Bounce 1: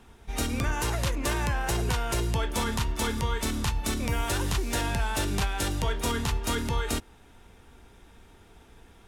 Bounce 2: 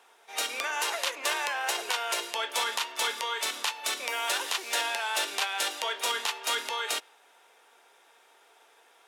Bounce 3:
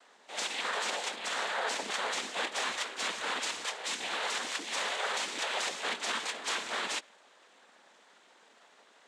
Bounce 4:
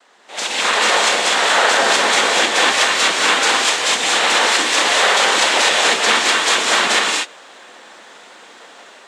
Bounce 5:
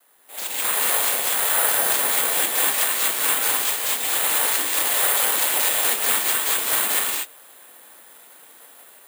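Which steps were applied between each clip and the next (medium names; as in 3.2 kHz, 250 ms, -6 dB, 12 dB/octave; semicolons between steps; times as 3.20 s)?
high-pass 510 Hz 24 dB/octave; dynamic bell 3.1 kHz, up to +6 dB, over -47 dBFS, Q 0.86
peak limiter -22.5 dBFS, peak gain reduction 8.5 dB; noise-vocoded speech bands 6
level rider gain up to 9 dB; gated-style reverb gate 270 ms rising, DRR -1.5 dB; trim +7 dB
careless resampling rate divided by 4×, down filtered, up zero stuff; trim -11.5 dB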